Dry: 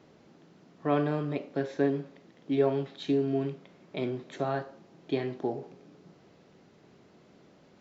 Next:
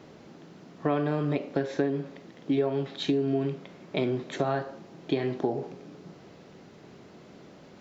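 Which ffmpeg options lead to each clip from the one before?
-af "acompressor=threshold=0.0282:ratio=6,volume=2.51"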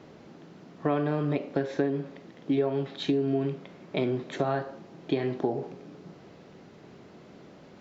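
-af "highshelf=f=5200:g=-5.5"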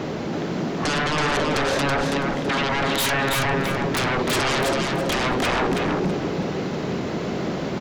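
-filter_complex "[0:a]acompressor=threshold=0.0398:ratio=6,aeval=exprs='0.1*sin(PI/2*8.91*val(0)/0.1)':c=same,asplit=2[s0][s1];[s1]aecho=0:1:328|656|984:0.668|0.16|0.0385[s2];[s0][s2]amix=inputs=2:normalize=0"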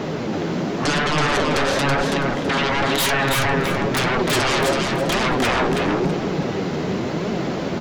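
-af "flanger=delay=4.3:depth=8.7:regen=51:speed=0.96:shape=triangular,volume=2.11"

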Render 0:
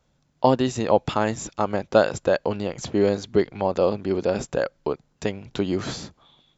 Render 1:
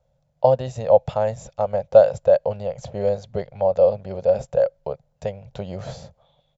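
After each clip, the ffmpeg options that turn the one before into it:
-af "firequalizer=gain_entry='entry(140,0);entry(310,-24);entry(540,7);entry(1100,-11)':delay=0.05:min_phase=1,volume=1.12"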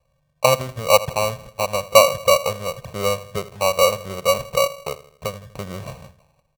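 -filter_complex "[0:a]adynamicsmooth=sensitivity=5.5:basefreq=1900,asplit=2[s0][s1];[s1]adelay=81,lowpass=f=820:p=1,volume=0.178,asplit=2[s2][s3];[s3]adelay=81,lowpass=f=820:p=1,volume=0.55,asplit=2[s4][s5];[s5]adelay=81,lowpass=f=820:p=1,volume=0.55,asplit=2[s6][s7];[s7]adelay=81,lowpass=f=820:p=1,volume=0.55,asplit=2[s8][s9];[s9]adelay=81,lowpass=f=820:p=1,volume=0.55[s10];[s0][s2][s4][s6][s8][s10]amix=inputs=6:normalize=0,acrusher=samples=26:mix=1:aa=0.000001"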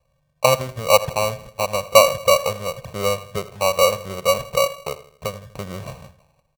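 -filter_complex "[0:a]asplit=2[s0][s1];[s1]adelay=100,highpass=300,lowpass=3400,asoftclip=type=hard:threshold=0.266,volume=0.1[s2];[s0][s2]amix=inputs=2:normalize=0"

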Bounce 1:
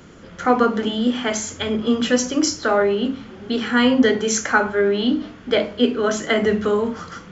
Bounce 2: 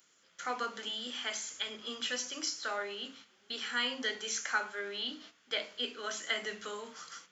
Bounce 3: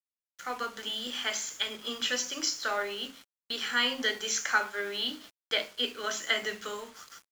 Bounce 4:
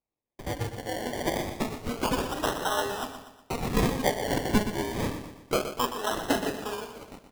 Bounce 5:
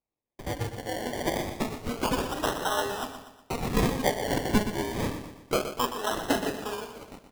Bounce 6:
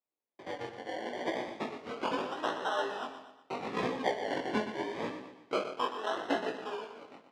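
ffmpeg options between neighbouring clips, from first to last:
-filter_complex "[0:a]aderivative,acrossover=split=4300[s0][s1];[s1]acompressor=threshold=0.00501:ratio=4:attack=1:release=60[s2];[s0][s2]amix=inputs=2:normalize=0,agate=range=0.398:threshold=0.00224:ratio=16:detection=peak"
-af "dynaudnorm=f=220:g=7:m=2,acrusher=bits=7:mix=0:aa=0.5,aeval=exprs='sgn(val(0))*max(abs(val(0))-0.00299,0)':c=same"
-filter_complex "[0:a]acrusher=samples=27:mix=1:aa=0.000001:lfo=1:lforange=16.2:lforate=0.28,asplit=2[s0][s1];[s1]aecho=0:1:121|242|363|484|605:0.316|0.145|0.0669|0.0308|0.0142[s2];[s0][s2]amix=inputs=2:normalize=0,volume=1.41"
-af anull
-af "flanger=delay=15.5:depth=7.7:speed=0.76,highpass=290,lowpass=3500,volume=0.891"

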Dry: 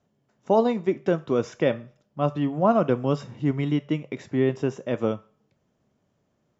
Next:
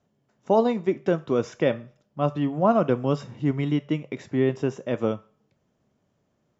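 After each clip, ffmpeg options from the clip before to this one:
-af anull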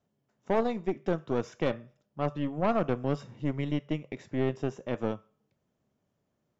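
-af "aeval=exprs='(tanh(7.08*val(0)+0.7)-tanh(0.7))/7.08':c=same,volume=0.708"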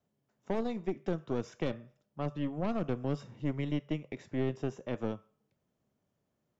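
-filter_complex "[0:a]acrossover=split=380|3000[s0][s1][s2];[s1]acompressor=threshold=0.02:ratio=6[s3];[s0][s3][s2]amix=inputs=3:normalize=0,volume=0.75"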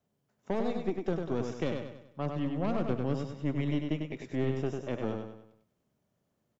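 -af "aecho=1:1:98|196|294|392|490:0.562|0.242|0.104|0.0447|0.0192,volume=1.12"

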